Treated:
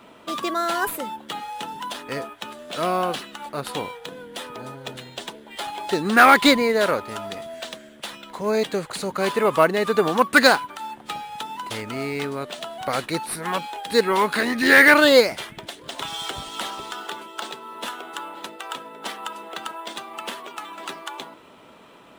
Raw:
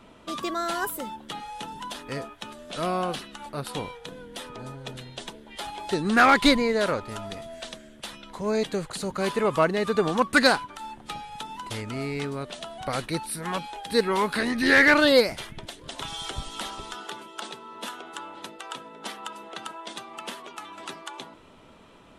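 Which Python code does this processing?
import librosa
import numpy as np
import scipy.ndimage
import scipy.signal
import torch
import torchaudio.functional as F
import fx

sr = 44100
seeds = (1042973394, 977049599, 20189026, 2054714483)

p1 = fx.highpass(x, sr, hz=290.0, slope=6)
p2 = fx.sample_hold(p1, sr, seeds[0], rate_hz=11000.0, jitter_pct=0)
p3 = p1 + (p2 * 10.0 ** (-9.0 / 20.0))
y = p3 * 10.0 ** (3.0 / 20.0)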